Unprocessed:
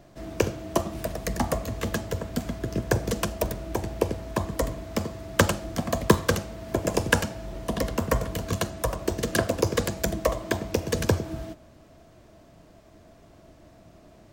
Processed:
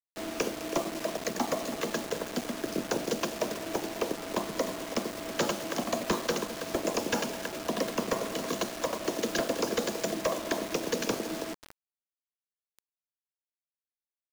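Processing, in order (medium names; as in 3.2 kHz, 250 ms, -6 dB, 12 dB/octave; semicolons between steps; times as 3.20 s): octave divider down 2 oct, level +2 dB; high-pass 230 Hz 24 dB/octave; delay 324 ms -16 dB; overload inside the chain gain 20.5 dB; brick-wall FIR low-pass 7.3 kHz; peaking EQ 1.7 kHz -2.5 dB 0.77 oct; in parallel at +1 dB: compression, threshold -42 dBFS, peak gain reduction 17.5 dB; on the sum: delay 208 ms -16 dB; word length cut 6-bit, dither none; trim -2.5 dB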